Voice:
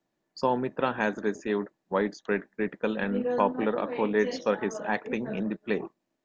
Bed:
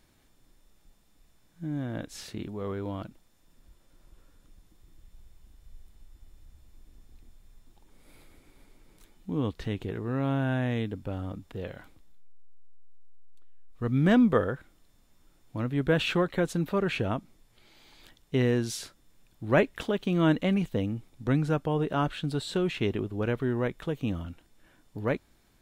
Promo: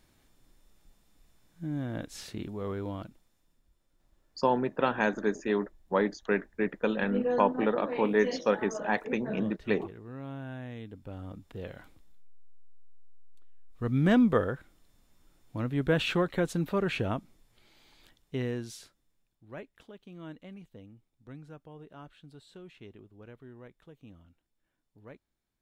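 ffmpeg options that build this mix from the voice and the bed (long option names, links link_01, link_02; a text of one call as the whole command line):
ffmpeg -i stem1.wav -i stem2.wav -filter_complex "[0:a]adelay=4000,volume=0dB[link_01];[1:a]volume=10dB,afade=type=out:start_time=2.81:duration=0.82:silence=0.266073,afade=type=in:start_time=10.8:duration=1.12:silence=0.281838,afade=type=out:start_time=17.08:duration=2.36:silence=0.105925[link_02];[link_01][link_02]amix=inputs=2:normalize=0" out.wav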